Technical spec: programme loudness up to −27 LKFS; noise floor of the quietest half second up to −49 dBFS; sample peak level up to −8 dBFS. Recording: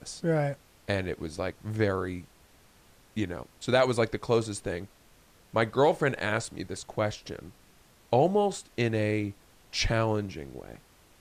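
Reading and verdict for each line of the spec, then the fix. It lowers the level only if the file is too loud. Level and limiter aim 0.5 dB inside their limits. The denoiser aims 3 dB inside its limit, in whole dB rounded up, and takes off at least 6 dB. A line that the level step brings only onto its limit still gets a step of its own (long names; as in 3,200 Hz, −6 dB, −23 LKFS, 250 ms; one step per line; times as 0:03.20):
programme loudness −29.0 LKFS: in spec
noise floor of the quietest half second −59 dBFS: in spec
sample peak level −12.5 dBFS: in spec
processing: no processing needed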